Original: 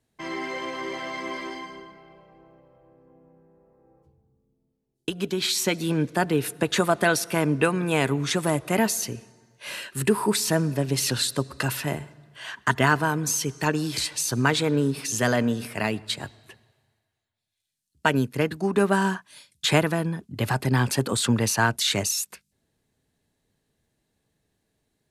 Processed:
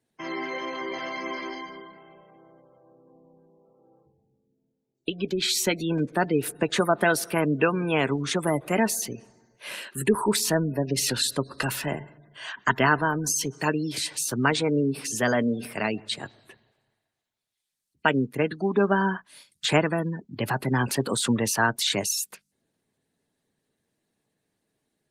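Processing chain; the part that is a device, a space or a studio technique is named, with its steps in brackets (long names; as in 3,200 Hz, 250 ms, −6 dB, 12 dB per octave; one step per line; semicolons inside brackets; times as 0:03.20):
noise-suppressed video call (high-pass filter 150 Hz 12 dB per octave; gate on every frequency bin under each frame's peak −25 dB strong; Opus 24 kbit/s 48,000 Hz)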